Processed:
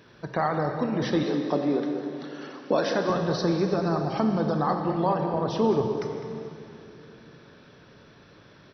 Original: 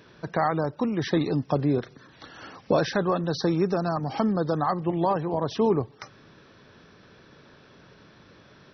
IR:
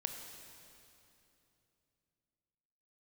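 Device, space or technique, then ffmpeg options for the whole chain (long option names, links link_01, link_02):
cave: -filter_complex "[0:a]aecho=1:1:205:0.237[link_01];[1:a]atrim=start_sample=2205[link_02];[link_01][link_02]afir=irnorm=-1:irlink=0,asettb=1/sr,asplit=3[link_03][link_04][link_05];[link_03]atrim=end=1.234[link_06];[link_04]atrim=start=1.23:end=3.1,asetpts=PTS-STARTPTS,afade=type=in:duration=0.004:curve=qsin,afade=type=out:start_time=1.866:duration=0.004:curve=qsin,highpass=frequency=200:width=0.5412,highpass=frequency=200:width=1.3066[link_07];[link_05]atrim=start=3.096[link_08];[link_06][link_07]acrossfade=duration=0.004:curve1=hsin:curve2=qsin[link_09];[link_09][link_08]acrossfade=duration=0.004:curve1=qsin:curve2=hsin"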